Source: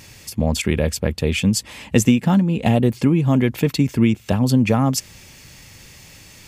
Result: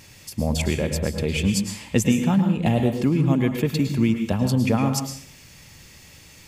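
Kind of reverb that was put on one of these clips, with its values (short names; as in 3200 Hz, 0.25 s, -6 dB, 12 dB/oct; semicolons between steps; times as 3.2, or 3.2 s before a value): plate-style reverb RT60 0.52 s, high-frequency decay 0.95×, pre-delay 95 ms, DRR 6 dB; gain -4.5 dB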